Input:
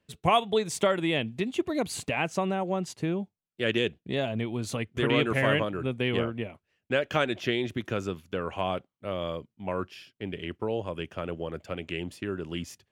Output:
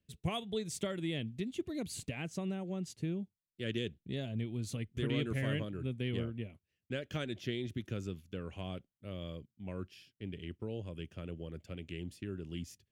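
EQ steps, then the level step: dynamic EQ 2600 Hz, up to -4 dB, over -44 dBFS, Q 5; passive tone stack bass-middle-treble 10-0-1; low shelf 160 Hz -7.5 dB; +13.0 dB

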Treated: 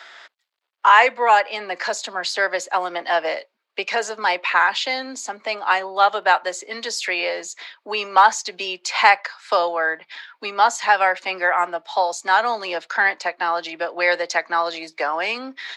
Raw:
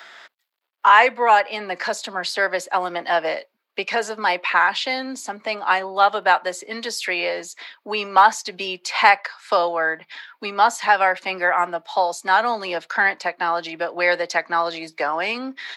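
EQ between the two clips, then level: dynamic EQ 6800 Hz, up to +5 dB, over -51 dBFS, Q 5.1; three-band isolator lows -12 dB, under 270 Hz, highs -23 dB, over 7800 Hz; high shelf 8800 Hz +10.5 dB; 0.0 dB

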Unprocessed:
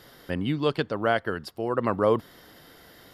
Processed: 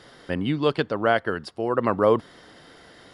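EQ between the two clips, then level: brick-wall FIR low-pass 11000 Hz; low shelf 130 Hz -5 dB; high shelf 4900 Hz -4.5 dB; +3.5 dB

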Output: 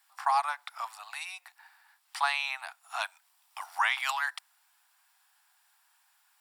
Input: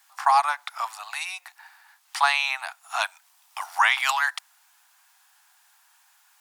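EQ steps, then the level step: notch 6400 Hz, Q 7.2; -7.5 dB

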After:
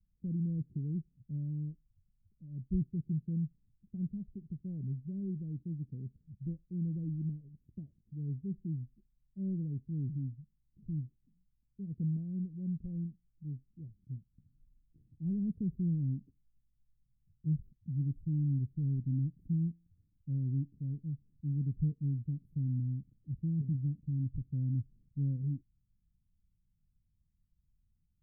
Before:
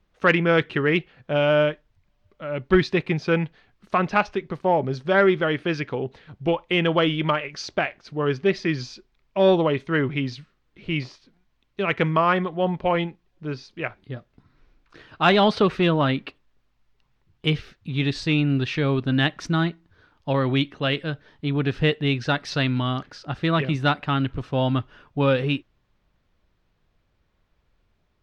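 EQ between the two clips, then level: inverse Chebyshev band-stop 980–5400 Hz, stop band 80 dB; notch 600 Hz, Q 18; -6.5 dB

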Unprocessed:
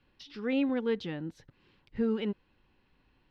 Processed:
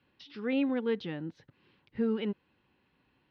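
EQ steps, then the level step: HPF 100 Hz 12 dB/oct; air absorption 260 m; high shelf 4000 Hz +11.5 dB; 0.0 dB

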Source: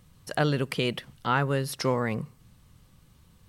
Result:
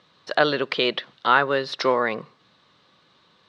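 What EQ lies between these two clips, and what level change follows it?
speaker cabinet 350–4900 Hz, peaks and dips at 370 Hz +3 dB, 610 Hz +4 dB, 1100 Hz +4 dB, 1600 Hz +7 dB, 3800 Hz +9 dB; notch 1600 Hz, Q 16; +5.0 dB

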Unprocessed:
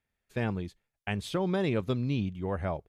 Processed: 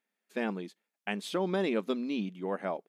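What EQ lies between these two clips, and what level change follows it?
brick-wall FIR high-pass 180 Hz; 0.0 dB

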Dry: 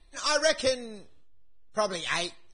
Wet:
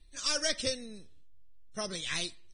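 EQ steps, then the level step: bell 880 Hz -14.5 dB 2.1 oct; 0.0 dB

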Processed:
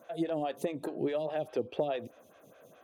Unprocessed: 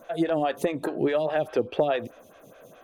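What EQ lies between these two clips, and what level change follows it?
HPF 70 Hz; dynamic EQ 1500 Hz, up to -7 dB, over -44 dBFS, Q 1.2; -7.0 dB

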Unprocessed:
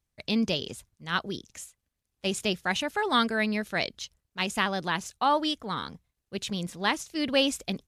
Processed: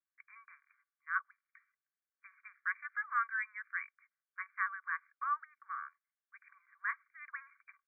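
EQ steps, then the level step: rippled Chebyshev high-pass 1100 Hz, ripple 6 dB; brick-wall FIR low-pass 2400 Hz; air absorption 350 m; 0.0 dB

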